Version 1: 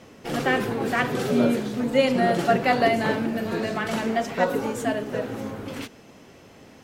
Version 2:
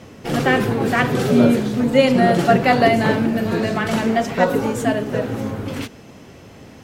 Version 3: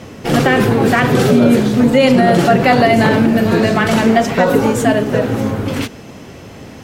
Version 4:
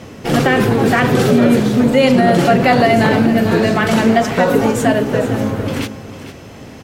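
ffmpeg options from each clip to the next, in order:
-af "equalizer=f=87:w=0.6:g=7,volume=5dB"
-af "alimiter=level_in=8.5dB:limit=-1dB:release=50:level=0:latency=1,volume=-1dB"
-af "aecho=1:1:452:0.224,volume=-1dB"

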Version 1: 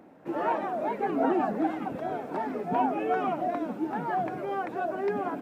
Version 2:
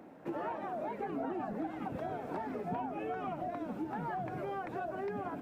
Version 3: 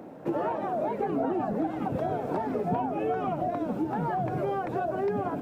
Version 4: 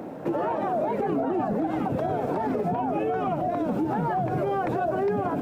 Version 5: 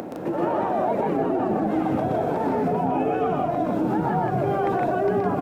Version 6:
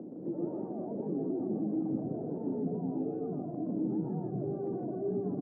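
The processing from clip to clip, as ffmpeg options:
-filter_complex "[0:a]asubboost=boost=2.5:cutoff=140,acrossover=split=140[a][b];[b]acompressor=threshold=-36dB:ratio=6[c];[a][c]amix=inputs=2:normalize=0"
-af "equalizer=f=125:t=o:w=1:g=5,equalizer=f=500:t=o:w=1:g=4,equalizer=f=2k:t=o:w=1:g=-4,volume=7dB"
-af "alimiter=level_in=2dB:limit=-24dB:level=0:latency=1:release=79,volume=-2dB,volume=7.5dB"
-filter_complex "[0:a]acompressor=mode=upward:threshold=-30dB:ratio=2.5,asplit=2[a][b];[b]aecho=0:1:122.4|160.3:0.708|0.708[c];[a][c]amix=inputs=2:normalize=0"
-af "asuperpass=centerf=230:order=4:qfactor=0.87,volume=-7.5dB"

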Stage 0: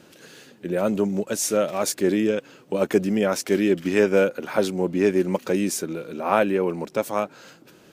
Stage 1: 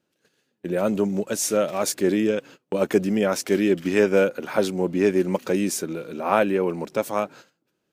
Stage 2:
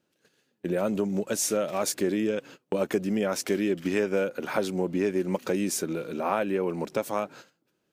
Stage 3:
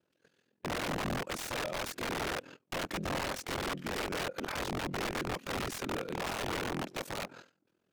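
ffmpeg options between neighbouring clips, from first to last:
-af "agate=range=-24dB:threshold=-42dB:ratio=16:detection=peak"
-af "acompressor=threshold=-24dB:ratio=3"
-af "aeval=exprs='val(0)*sin(2*PI*21*n/s)':c=same,aeval=exprs='(mod(25.1*val(0)+1,2)-1)/25.1':c=same,aemphasis=mode=reproduction:type=cd"

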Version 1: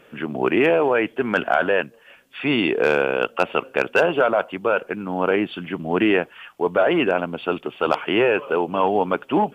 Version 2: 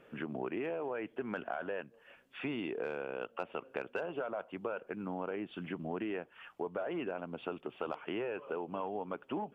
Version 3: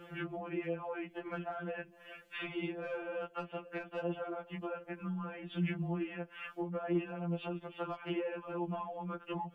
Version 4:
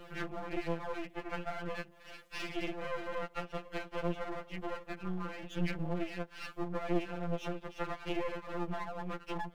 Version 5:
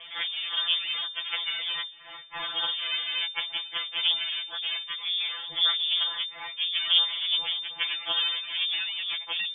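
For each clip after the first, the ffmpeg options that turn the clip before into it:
-af "highshelf=f=2.6k:g=-9.5,acompressor=threshold=-28dB:ratio=5,volume=-7.5dB"
-filter_complex "[0:a]acrossover=split=150[a][b];[b]acompressor=threshold=-45dB:ratio=4[c];[a][c]amix=inputs=2:normalize=0,afftfilt=real='re*2.83*eq(mod(b,8),0)':imag='im*2.83*eq(mod(b,8),0)':win_size=2048:overlap=0.75,volume=10dB"
-af "aeval=exprs='max(val(0),0)':c=same,volume=5dB"
-filter_complex "[0:a]asplit=2[a][b];[b]acrusher=bits=3:mix=0:aa=0.5,volume=-11dB[c];[a][c]amix=inputs=2:normalize=0,lowpass=f=3.1k:t=q:w=0.5098,lowpass=f=3.1k:t=q:w=0.6013,lowpass=f=3.1k:t=q:w=0.9,lowpass=f=3.1k:t=q:w=2.563,afreqshift=-3600,volume=7dB"

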